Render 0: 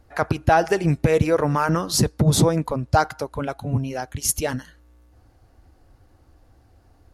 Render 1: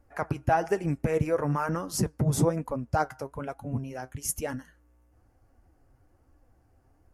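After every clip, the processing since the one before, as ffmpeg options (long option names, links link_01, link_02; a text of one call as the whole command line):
ffmpeg -i in.wav -af "equalizer=frequency=3900:width_type=o:width=0.65:gain=-13,flanger=delay=3.5:depth=4.3:regen=64:speed=1.1:shape=sinusoidal,volume=-3.5dB" out.wav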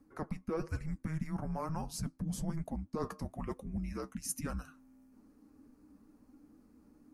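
ffmpeg -i in.wav -af "areverse,acompressor=threshold=-36dB:ratio=5,areverse,afreqshift=-320,volume=1dB" out.wav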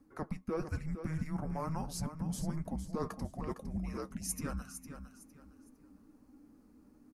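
ffmpeg -i in.wav -af "aecho=1:1:458|916|1374:0.316|0.0854|0.0231" out.wav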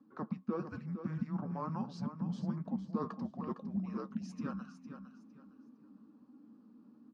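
ffmpeg -i in.wav -af "highpass=frequency=130:width=0.5412,highpass=frequency=130:width=1.3066,equalizer=frequency=220:width_type=q:width=4:gain=10,equalizer=frequency=670:width_type=q:width=4:gain=-3,equalizer=frequency=1100:width_type=q:width=4:gain=5,equalizer=frequency=2100:width_type=q:width=4:gain=-10,lowpass=frequency=4300:width=0.5412,lowpass=frequency=4300:width=1.3066,volume=-2.5dB" out.wav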